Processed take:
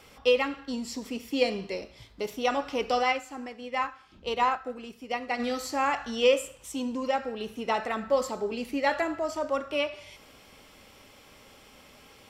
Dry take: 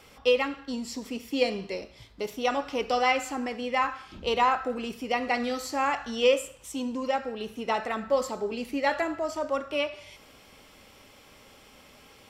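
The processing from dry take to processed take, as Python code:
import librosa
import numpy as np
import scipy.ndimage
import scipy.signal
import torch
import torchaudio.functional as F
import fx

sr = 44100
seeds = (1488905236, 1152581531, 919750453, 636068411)

y = fx.upward_expand(x, sr, threshold_db=-38.0, expansion=1.5, at=(3.02, 5.38), fade=0.02)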